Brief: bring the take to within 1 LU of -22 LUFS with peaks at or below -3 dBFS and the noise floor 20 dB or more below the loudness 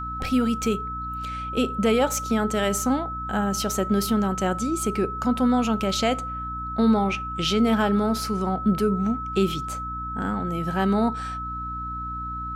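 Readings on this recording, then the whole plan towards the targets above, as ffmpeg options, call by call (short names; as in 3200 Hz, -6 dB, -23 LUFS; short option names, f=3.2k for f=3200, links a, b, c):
hum 60 Hz; harmonics up to 300 Hz; hum level -34 dBFS; steady tone 1300 Hz; tone level -30 dBFS; loudness -24.5 LUFS; peak -10.0 dBFS; loudness target -22.0 LUFS
-> -af "bandreject=f=60:t=h:w=6,bandreject=f=120:t=h:w=6,bandreject=f=180:t=h:w=6,bandreject=f=240:t=h:w=6,bandreject=f=300:t=h:w=6"
-af "bandreject=f=1.3k:w=30"
-af "volume=2.5dB"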